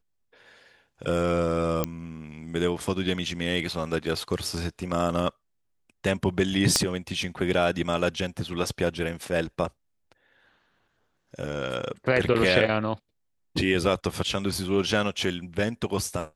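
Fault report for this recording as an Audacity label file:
1.840000	1.840000	click −9 dBFS
6.760000	6.760000	click −7 dBFS

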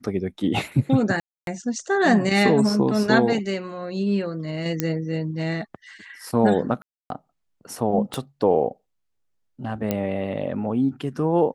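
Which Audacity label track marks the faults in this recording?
1.200000	1.470000	drop-out 272 ms
4.800000	4.800000	click −8 dBFS
6.820000	7.100000	drop-out 282 ms
8.140000	8.140000	click −13 dBFS
9.910000	9.910000	click −10 dBFS

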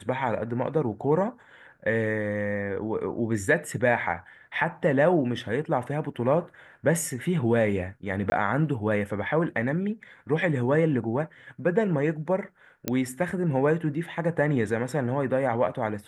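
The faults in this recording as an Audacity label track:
8.300000	8.320000	drop-out 20 ms
12.880000	12.880000	click −11 dBFS

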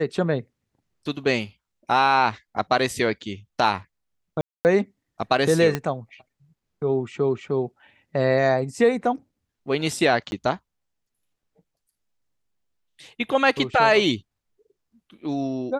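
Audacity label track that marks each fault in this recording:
4.410000	4.650000	drop-out 239 ms
5.750000	5.750000	click −10 dBFS
10.310000	10.320000	drop-out 11 ms

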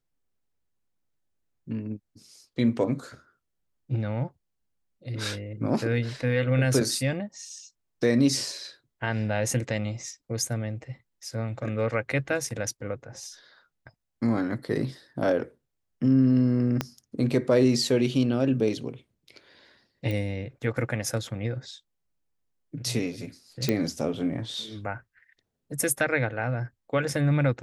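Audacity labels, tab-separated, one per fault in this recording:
16.810000	16.810000	click −11 dBFS
20.110000	20.110000	click −20 dBFS
23.690000	23.690000	click −10 dBFS

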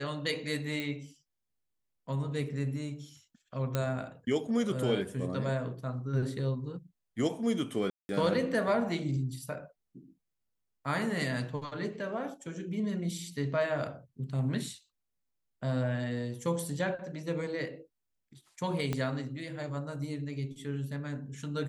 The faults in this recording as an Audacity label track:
0.800000	0.800000	click −22 dBFS
3.750000	3.750000	click −16 dBFS
7.900000	8.090000	drop-out 190 ms
18.930000	18.930000	click −18 dBFS

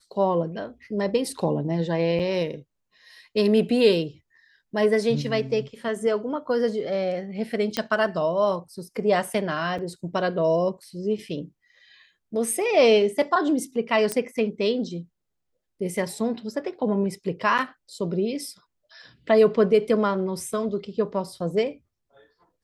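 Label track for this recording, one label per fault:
2.190000	2.200000	drop-out 5.8 ms
7.770000	7.770000	click −10 dBFS
9.780000	9.790000	drop-out 5.6 ms
14.120000	14.120000	click −11 dBFS

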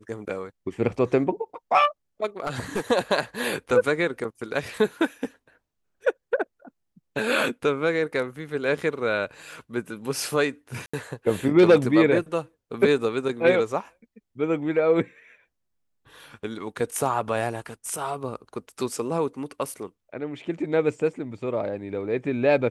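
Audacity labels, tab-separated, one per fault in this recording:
2.400000	2.810000	clipping −21 dBFS
10.860000	10.940000	drop-out 75 ms

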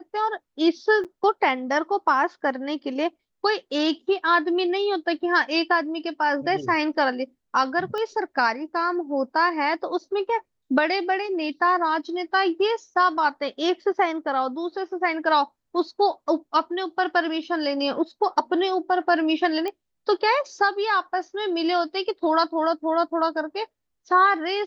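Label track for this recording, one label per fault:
1.040000	1.050000	drop-out 7.4 ms
7.980000	7.980000	click −19 dBFS
19.680000	19.680000	click −17 dBFS

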